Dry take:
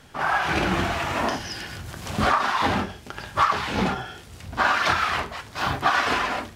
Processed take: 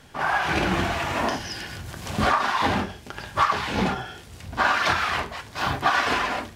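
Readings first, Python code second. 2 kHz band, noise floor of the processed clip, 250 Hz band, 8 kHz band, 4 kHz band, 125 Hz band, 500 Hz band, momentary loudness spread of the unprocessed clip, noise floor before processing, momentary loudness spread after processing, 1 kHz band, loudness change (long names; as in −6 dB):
0.0 dB, −45 dBFS, 0.0 dB, 0.0 dB, 0.0 dB, 0.0 dB, 0.0 dB, 13 LU, −45 dBFS, 12 LU, −0.5 dB, −0.5 dB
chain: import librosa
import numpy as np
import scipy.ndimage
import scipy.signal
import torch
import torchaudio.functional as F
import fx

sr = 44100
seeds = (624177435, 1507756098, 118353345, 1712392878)

y = fx.notch(x, sr, hz=1300.0, q=18.0)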